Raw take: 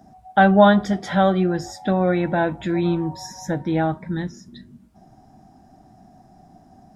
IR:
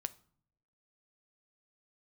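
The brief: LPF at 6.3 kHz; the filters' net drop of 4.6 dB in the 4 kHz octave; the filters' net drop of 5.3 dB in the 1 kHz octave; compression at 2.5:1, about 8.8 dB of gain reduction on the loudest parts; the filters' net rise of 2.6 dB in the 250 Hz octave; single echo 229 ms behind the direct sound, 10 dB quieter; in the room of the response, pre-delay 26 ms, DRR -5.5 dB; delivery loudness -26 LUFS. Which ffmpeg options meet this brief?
-filter_complex "[0:a]lowpass=6300,equalizer=f=250:t=o:g=4.5,equalizer=f=1000:t=o:g=-8,equalizer=f=4000:t=o:g=-4.5,acompressor=threshold=0.0708:ratio=2.5,aecho=1:1:229:0.316,asplit=2[s0][s1];[1:a]atrim=start_sample=2205,adelay=26[s2];[s1][s2]afir=irnorm=-1:irlink=0,volume=2.24[s3];[s0][s3]amix=inputs=2:normalize=0,volume=0.422"

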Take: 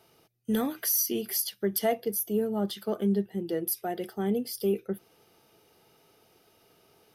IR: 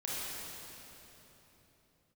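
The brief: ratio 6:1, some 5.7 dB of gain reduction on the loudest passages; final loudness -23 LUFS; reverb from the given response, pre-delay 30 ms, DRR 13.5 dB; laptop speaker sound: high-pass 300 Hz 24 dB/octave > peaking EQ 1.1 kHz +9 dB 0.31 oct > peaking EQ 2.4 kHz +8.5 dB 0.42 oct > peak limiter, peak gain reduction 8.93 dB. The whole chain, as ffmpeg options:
-filter_complex "[0:a]acompressor=threshold=0.0398:ratio=6,asplit=2[s0][s1];[1:a]atrim=start_sample=2205,adelay=30[s2];[s1][s2]afir=irnorm=-1:irlink=0,volume=0.133[s3];[s0][s3]amix=inputs=2:normalize=0,highpass=f=300:w=0.5412,highpass=f=300:w=1.3066,equalizer=f=1100:t=o:w=0.31:g=9,equalizer=f=2400:t=o:w=0.42:g=8.5,volume=5.62,alimiter=limit=0.211:level=0:latency=1"

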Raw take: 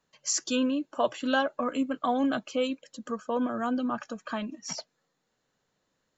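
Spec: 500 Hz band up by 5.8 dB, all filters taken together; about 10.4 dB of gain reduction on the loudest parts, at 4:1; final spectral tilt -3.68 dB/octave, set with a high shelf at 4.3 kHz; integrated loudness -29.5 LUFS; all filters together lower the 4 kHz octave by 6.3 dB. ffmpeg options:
-af "equalizer=f=500:t=o:g=6.5,equalizer=f=4000:t=o:g=-6.5,highshelf=f=4300:g=-5,acompressor=threshold=0.0355:ratio=4,volume=1.68"

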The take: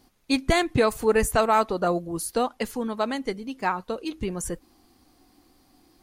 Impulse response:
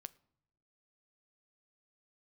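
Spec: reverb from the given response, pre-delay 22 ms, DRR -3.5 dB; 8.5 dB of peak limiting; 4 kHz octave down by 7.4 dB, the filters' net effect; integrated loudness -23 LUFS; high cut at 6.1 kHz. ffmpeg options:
-filter_complex "[0:a]lowpass=6100,equalizer=f=4000:t=o:g=-8.5,alimiter=limit=0.126:level=0:latency=1,asplit=2[s0][s1];[1:a]atrim=start_sample=2205,adelay=22[s2];[s1][s2]afir=irnorm=-1:irlink=0,volume=2.99[s3];[s0][s3]amix=inputs=2:normalize=0,volume=1.19"

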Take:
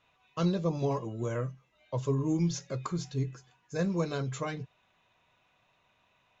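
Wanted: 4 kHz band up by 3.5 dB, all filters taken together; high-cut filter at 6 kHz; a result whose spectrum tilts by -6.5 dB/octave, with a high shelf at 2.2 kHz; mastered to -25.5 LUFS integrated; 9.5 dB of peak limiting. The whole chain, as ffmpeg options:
-af "lowpass=6000,highshelf=f=2200:g=-3,equalizer=f=4000:t=o:g=8,volume=3.76,alimiter=limit=0.168:level=0:latency=1"

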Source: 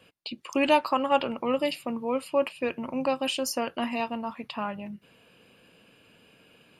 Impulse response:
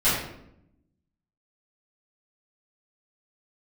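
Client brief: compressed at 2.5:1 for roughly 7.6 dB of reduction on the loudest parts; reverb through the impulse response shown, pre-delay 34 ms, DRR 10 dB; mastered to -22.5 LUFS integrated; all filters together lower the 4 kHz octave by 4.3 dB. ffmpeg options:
-filter_complex "[0:a]equalizer=f=4000:t=o:g=-7,acompressor=threshold=0.0398:ratio=2.5,asplit=2[s0][s1];[1:a]atrim=start_sample=2205,adelay=34[s2];[s1][s2]afir=irnorm=-1:irlink=0,volume=0.0501[s3];[s0][s3]amix=inputs=2:normalize=0,volume=3.16"

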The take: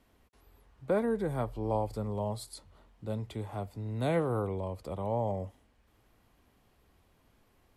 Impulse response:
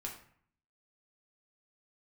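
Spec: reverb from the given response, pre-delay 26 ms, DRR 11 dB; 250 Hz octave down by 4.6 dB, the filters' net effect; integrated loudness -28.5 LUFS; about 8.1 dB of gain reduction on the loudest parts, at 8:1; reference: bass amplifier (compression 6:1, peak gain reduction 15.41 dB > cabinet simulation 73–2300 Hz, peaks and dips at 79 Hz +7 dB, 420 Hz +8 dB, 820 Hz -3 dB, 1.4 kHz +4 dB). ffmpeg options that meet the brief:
-filter_complex "[0:a]equalizer=f=250:t=o:g=-8,acompressor=threshold=0.02:ratio=8,asplit=2[s0][s1];[1:a]atrim=start_sample=2205,adelay=26[s2];[s1][s2]afir=irnorm=-1:irlink=0,volume=0.316[s3];[s0][s3]amix=inputs=2:normalize=0,acompressor=threshold=0.00355:ratio=6,highpass=f=73:w=0.5412,highpass=f=73:w=1.3066,equalizer=f=79:t=q:w=4:g=7,equalizer=f=420:t=q:w=4:g=8,equalizer=f=820:t=q:w=4:g=-3,equalizer=f=1400:t=q:w=4:g=4,lowpass=f=2300:w=0.5412,lowpass=f=2300:w=1.3066,volume=12.6"

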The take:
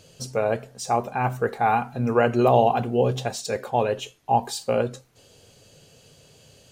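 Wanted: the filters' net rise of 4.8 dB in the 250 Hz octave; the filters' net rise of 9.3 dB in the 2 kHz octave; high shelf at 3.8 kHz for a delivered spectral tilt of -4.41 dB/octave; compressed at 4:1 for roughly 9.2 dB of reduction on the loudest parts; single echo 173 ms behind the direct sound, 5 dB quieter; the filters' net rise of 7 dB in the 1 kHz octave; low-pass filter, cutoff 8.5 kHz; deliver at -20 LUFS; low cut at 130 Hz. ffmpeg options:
-af "highpass=130,lowpass=8500,equalizer=f=250:t=o:g=5.5,equalizer=f=1000:t=o:g=7.5,equalizer=f=2000:t=o:g=9,highshelf=f=3800:g=3.5,acompressor=threshold=0.112:ratio=4,aecho=1:1:173:0.562,volume=1.5"

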